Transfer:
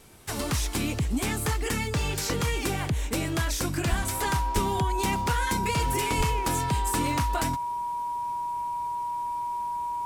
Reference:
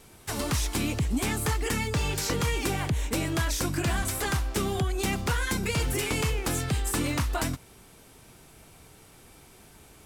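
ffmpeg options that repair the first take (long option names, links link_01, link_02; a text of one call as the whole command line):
ffmpeg -i in.wav -filter_complex "[0:a]bandreject=frequency=960:width=30,asplit=3[link_01][link_02][link_03];[link_01]afade=type=out:start_time=3.89:duration=0.02[link_04];[link_02]highpass=frequency=140:width=0.5412,highpass=frequency=140:width=1.3066,afade=type=in:start_time=3.89:duration=0.02,afade=type=out:start_time=4.01:duration=0.02[link_05];[link_03]afade=type=in:start_time=4.01:duration=0.02[link_06];[link_04][link_05][link_06]amix=inputs=3:normalize=0,asplit=3[link_07][link_08][link_09];[link_07]afade=type=out:start_time=4.54:duration=0.02[link_10];[link_08]highpass=frequency=140:width=0.5412,highpass=frequency=140:width=1.3066,afade=type=in:start_time=4.54:duration=0.02,afade=type=out:start_time=4.66:duration=0.02[link_11];[link_09]afade=type=in:start_time=4.66:duration=0.02[link_12];[link_10][link_11][link_12]amix=inputs=3:normalize=0,asplit=3[link_13][link_14][link_15];[link_13]afade=type=out:start_time=6.17:duration=0.02[link_16];[link_14]highpass=frequency=140:width=0.5412,highpass=frequency=140:width=1.3066,afade=type=in:start_time=6.17:duration=0.02,afade=type=out:start_time=6.29:duration=0.02[link_17];[link_15]afade=type=in:start_time=6.29:duration=0.02[link_18];[link_16][link_17][link_18]amix=inputs=3:normalize=0" out.wav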